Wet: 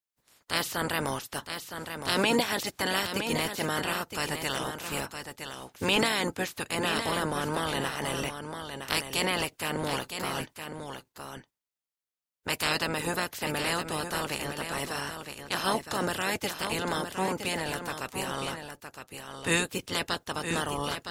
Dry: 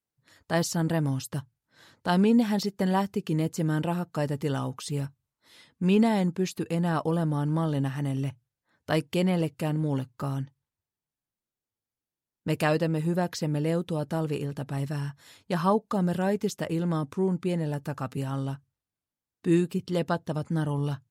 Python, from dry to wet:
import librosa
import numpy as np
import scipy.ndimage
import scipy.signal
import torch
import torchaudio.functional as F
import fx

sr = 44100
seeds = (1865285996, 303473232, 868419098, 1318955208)

p1 = fx.spec_clip(x, sr, under_db=29)
p2 = p1 + fx.echo_single(p1, sr, ms=964, db=-8.0, dry=0)
y = p2 * 10.0 ** (-3.5 / 20.0)